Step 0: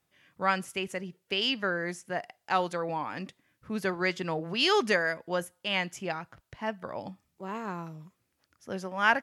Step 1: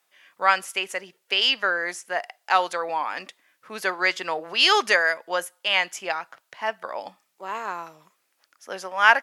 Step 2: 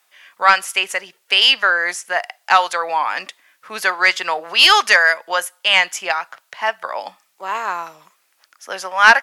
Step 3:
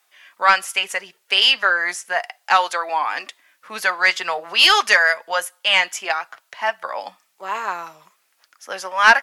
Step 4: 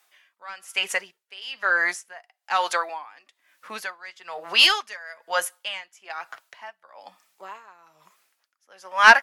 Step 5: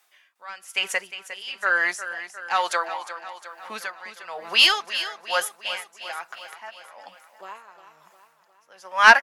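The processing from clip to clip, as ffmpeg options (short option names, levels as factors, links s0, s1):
-af "highpass=650,volume=2.66"
-filter_complex "[0:a]acrossover=split=620[s0][s1];[s0]alimiter=level_in=2.11:limit=0.0631:level=0:latency=1:release=375,volume=0.473[s2];[s1]aeval=exprs='0.75*sin(PI/2*1.58*val(0)/0.75)':c=same[s3];[s2][s3]amix=inputs=2:normalize=0,volume=1.12"
-af "flanger=delay=2.5:depth=2.9:regen=-56:speed=0.32:shape=triangular,volume=1.26"
-af "aeval=exprs='val(0)*pow(10,-25*(0.5-0.5*cos(2*PI*1.1*n/s))/20)':c=same"
-af "aecho=1:1:356|712|1068|1424|1780|2136:0.251|0.146|0.0845|0.049|0.0284|0.0165"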